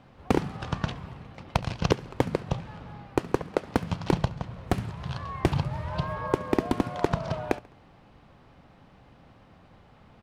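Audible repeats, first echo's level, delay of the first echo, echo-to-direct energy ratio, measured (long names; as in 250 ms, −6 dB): 2, −22.0 dB, 69 ms, −21.0 dB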